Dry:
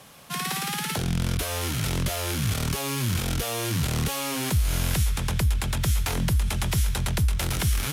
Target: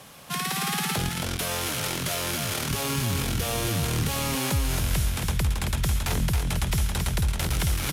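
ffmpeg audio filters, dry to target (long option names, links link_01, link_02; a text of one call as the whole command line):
ffmpeg -i in.wav -filter_complex "[0:a]asettb=1/sr,asplit=3[link_01][link_02][link_03];[link_01]atrim=end=1.094[link_04];[link_02]atrim=start=1.09:end=2.7,asetpts=PTS-STARTPTS,afade=type=in:duration=0.004:curve=qsin,afade=type=out:start_time=1.606:duration=0.004:curve=qsin,highpass=frequency=340:poles=1[link_05];[link_03]atrim=start=2.696[link_06];[link_04][link_05]acrossfade=duration=0.004:curve1=hsin:curve2=qsin[link_07];[link_07][link_06]acrossfade=duration=0.004:curve1=qsin:curve2=hsin,acompressor=threshold=-28dB:ratio=2,aecho=1:1:273:0.596,volume=2dB" out.wav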